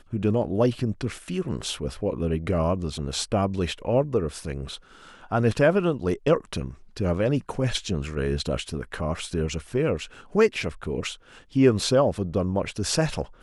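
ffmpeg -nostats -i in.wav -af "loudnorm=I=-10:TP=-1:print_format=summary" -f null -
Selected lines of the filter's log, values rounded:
Input Integrated:    -25.6 LUFS
Input True Peak:      -6.2 dBTP
Input LRA:             2.5 LU
Input Threshold:     -35.8 LUFS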